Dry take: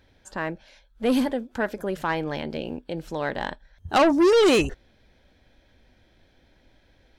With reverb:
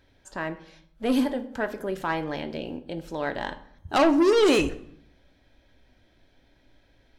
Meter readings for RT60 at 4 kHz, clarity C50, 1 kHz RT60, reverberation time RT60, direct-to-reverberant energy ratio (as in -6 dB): 0.45 s, 15.0 dB, 0.65 s, 0.65 s, 8.5 dB